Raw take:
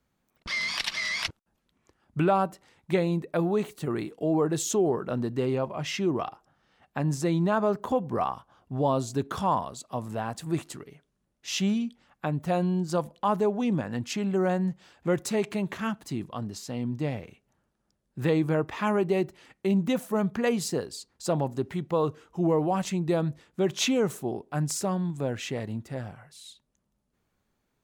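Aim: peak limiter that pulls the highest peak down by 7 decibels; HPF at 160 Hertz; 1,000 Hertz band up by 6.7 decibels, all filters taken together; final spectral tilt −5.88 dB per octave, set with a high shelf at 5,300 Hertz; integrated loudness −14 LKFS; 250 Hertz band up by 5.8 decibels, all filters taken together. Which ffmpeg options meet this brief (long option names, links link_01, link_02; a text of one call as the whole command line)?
ffmpeg -i in.wav -af "highpass=160,equalizer=frequency=250:width_type=o:gain=9,equalizer=frequency=1000:width_type=o:gain=8,highshelf=frequency=5300:gain=-3.5,volume=11.5dB,alimiter=limit=-2dB:level=0:latency=1" out.wav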